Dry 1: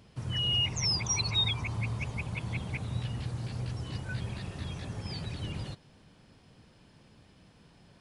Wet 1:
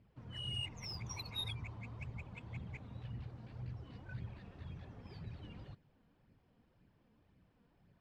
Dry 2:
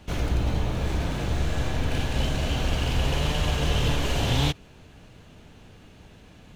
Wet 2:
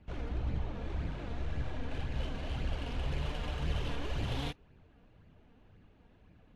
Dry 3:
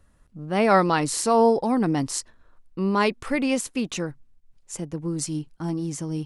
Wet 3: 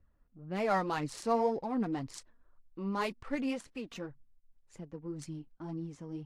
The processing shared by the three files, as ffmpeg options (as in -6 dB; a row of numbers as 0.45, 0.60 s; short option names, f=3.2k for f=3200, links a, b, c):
-af "adynamicsmooth=sensitivity=3:basefreq=2.5k,flanger=delay=0.4:depth=3.9:regen=32:speed=1.9:shape=sinusoidal,volume=-8dB" -ar 32000 -c:a aac -b:a 64k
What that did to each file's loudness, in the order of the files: -13.5, -11.5, -12.0 LU